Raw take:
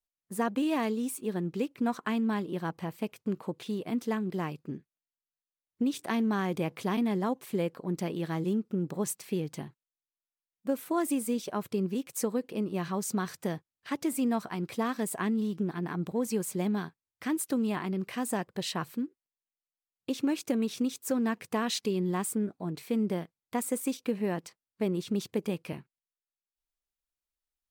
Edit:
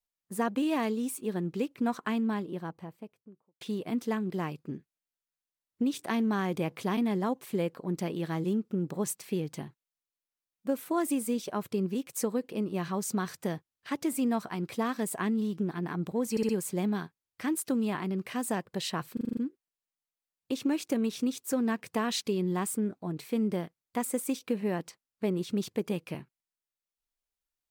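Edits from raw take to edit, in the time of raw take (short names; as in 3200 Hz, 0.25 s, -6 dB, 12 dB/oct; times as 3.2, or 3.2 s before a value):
2–3.61 studio fade out
16.31 stutter 0.06 s, 4 plays
18.95 stutter 0.04 s, 7 plays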